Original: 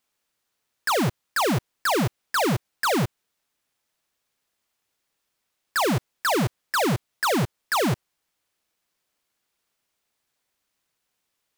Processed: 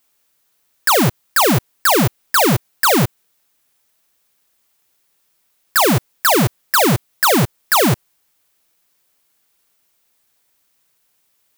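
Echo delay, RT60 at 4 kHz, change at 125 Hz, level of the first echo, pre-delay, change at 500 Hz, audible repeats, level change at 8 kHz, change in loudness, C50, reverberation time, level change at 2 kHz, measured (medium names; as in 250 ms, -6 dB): no echo, no reverb, +8.0 dB, no echo, no reverb, +8.0 dB, no echo, +12.0 dB, +9.5 dB, no reverb, no reverb, +8.5 dB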